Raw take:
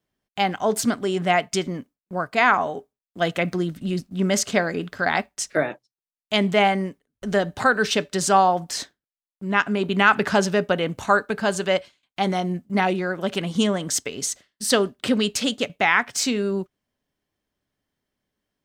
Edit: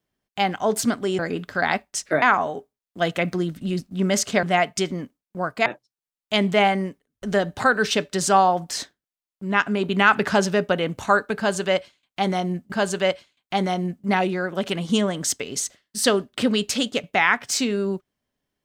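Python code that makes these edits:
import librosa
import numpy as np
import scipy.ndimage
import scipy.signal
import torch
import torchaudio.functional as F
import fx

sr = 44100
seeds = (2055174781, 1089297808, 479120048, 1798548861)

y = fx.edit(x, sr, fx.swap(start_s=1.19, length_s=1.23, other_s=4.63, other_length_s=1.03),
    fx.repeat(start_s=11.38, length_s=1.34, count=2), tone=tone)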